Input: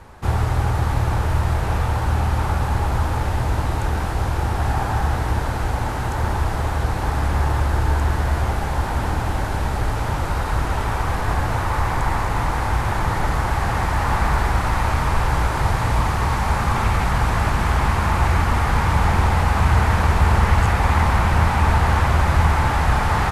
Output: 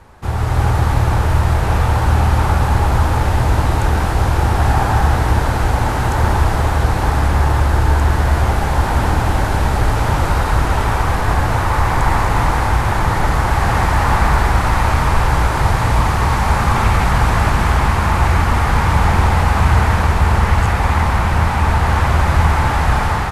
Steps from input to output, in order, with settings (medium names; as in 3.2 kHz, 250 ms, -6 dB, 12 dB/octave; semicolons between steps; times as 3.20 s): level rider; trim -1 dB